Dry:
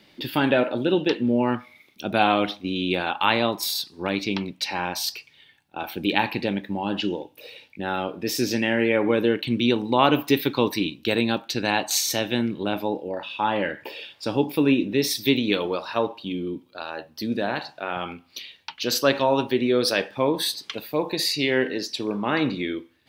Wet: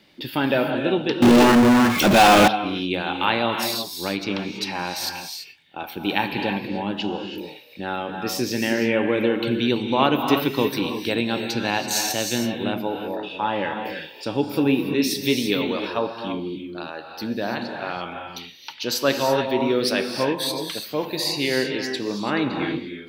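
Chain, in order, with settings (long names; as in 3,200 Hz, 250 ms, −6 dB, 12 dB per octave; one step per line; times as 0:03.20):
reverb whose tail is shaped and stops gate 360 ms rising, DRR 4.5 dB
0:01.22–0:02.48: power curve on the samples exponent 0.35
level −1 dB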